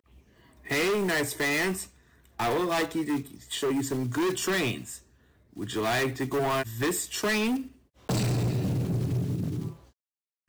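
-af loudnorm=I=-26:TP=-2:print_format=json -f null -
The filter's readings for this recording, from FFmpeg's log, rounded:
"input_i" : "-28.5",
"input_tp" : "-21.5",
"input_lra" : "2.8",
"input_thresh" : "-39.5",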